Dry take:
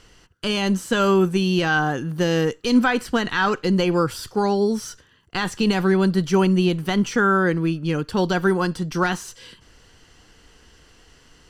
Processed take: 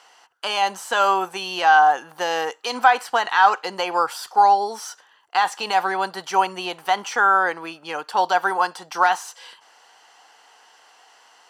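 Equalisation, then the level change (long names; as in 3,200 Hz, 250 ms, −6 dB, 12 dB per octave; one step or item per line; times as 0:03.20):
high-pass with resonance 800 Hz, resonance Q 4.5
0.0 dB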